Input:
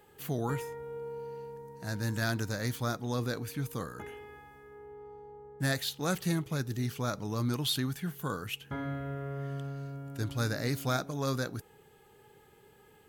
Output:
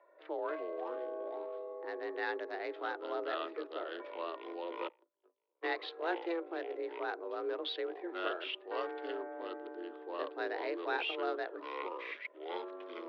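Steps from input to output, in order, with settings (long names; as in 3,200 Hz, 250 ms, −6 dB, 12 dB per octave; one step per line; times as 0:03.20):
adaptive Wiener filter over 15 samples
delay with pitch and tempo change per echo 177 ms, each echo −6 semitones, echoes 2
0:04.88–0:05.79: noise gate −30 dBFS, range −43 dB
single-sideband voice off tune +170 Hz 190–3,500 Hz
level −3 dB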